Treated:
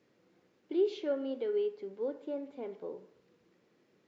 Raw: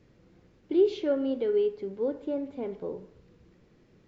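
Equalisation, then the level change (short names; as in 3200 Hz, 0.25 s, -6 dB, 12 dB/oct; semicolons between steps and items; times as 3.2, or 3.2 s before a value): Bessel high-pass 320 Hz, order 2; -4.5 dB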